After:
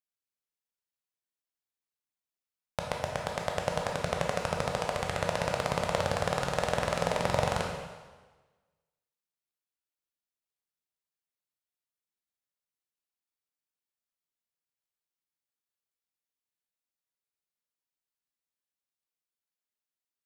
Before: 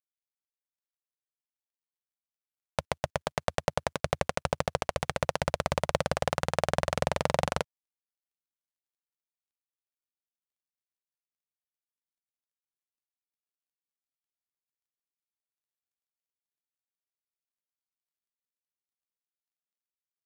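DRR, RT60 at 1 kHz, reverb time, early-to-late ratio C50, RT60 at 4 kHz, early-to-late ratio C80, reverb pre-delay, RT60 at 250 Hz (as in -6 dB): 0.0 dB, 1.3 s, 1.3 s, 3.0 dB, 1.2 s, 5.0 dB, 7 ms, 1.3 s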